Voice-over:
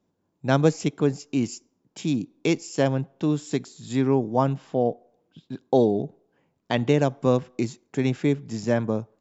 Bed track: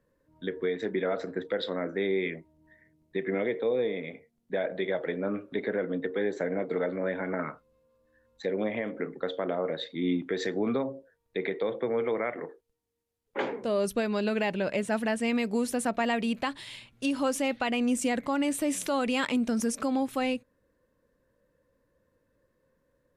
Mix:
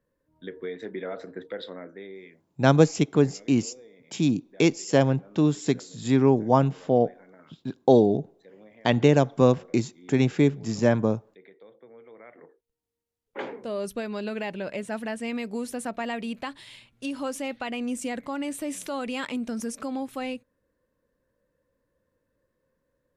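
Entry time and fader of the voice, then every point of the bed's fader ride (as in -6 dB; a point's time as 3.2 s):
2.15 s, +2.0 dB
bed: 1.61 s -5 dB
2.51 s -21.5 dB
12.07 s -21.5 dB
12.82 s -3.5 dB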